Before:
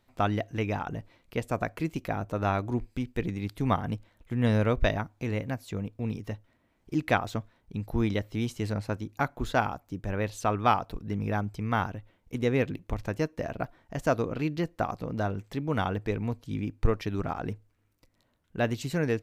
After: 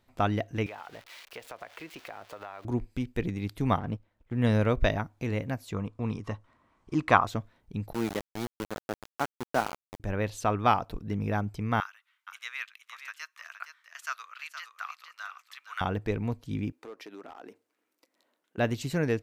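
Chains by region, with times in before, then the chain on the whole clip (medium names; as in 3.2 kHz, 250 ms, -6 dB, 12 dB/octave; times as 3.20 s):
0.66–2.65 s: zero-crossing glitches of -28.5 dBFS + three-band isolator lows -20 dB, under 440 Hz, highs -20 dB, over 4.2 kHz + compression, threshold -38 dBFS
3.79–4.38 s: companding laws mixed up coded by A + low-pass 1.8 kHz 6 dB/octave
5.73–7.27 s: low-pass 9.6 kHz 24 dB/octave + peaking EQ 1.1 kHz +14 dB 0.56 oct
7.93–10.00 s: Bessel high-pass 220 Hz, order 6 + peaking EQ 3.2 kHz -9.5 dB 1.6 oct + small samples zeroed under -30 dBFS
11.80–15.81 s: Chebyshev high-pass 1.2 kHz, order 4 + delay 467 ms -9 dB
16.72–18.58 s: high-pass 290 Hz 24 dB/octave + compression 2.5:1, threshold -45 dBFS + hard clipper -37.5 dBFS
whole clip: none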